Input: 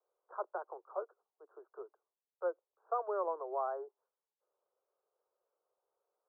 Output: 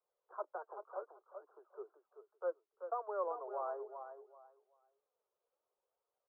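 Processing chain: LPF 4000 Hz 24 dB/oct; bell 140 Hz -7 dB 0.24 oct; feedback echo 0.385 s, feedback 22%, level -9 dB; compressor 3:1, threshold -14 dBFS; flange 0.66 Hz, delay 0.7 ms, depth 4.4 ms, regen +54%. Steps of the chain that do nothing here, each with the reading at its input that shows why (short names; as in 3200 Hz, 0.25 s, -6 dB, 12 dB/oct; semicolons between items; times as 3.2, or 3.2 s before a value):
LPF 4000 Hz: input band ends at 1500 Hz; bell 140 Hz: input band starts at 320 Hz; compressor, threshold -14 dBFS: input peak -23.0 dBFS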